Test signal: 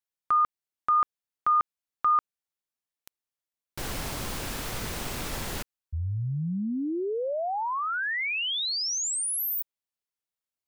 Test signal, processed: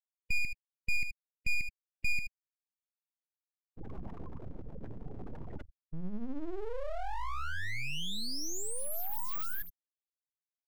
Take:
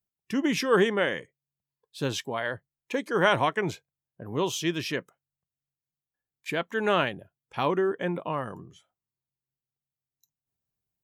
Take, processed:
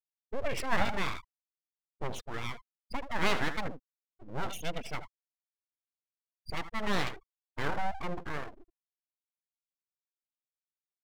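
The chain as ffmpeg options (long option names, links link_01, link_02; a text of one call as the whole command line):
ffmpeg -i in.wav -af "aecho=1:1:79:0.355,afftfilt=real='re*gte(hypot(re,im),0.0562)':imag='im*gte(hypot(re,im),0.0562)':win_size=1024:overlap=0.75,aeval=exprs='abs(val(0))':channel_layout=same,volume=-4dB" out.wav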